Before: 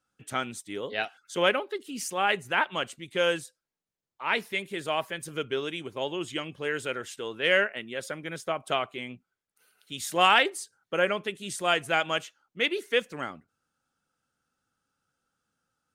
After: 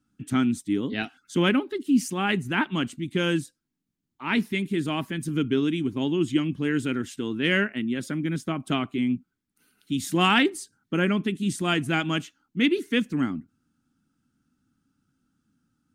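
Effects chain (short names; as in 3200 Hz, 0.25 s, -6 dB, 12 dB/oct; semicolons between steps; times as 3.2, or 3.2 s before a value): resonant low shelf 380 Hz +11.5 dB, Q 3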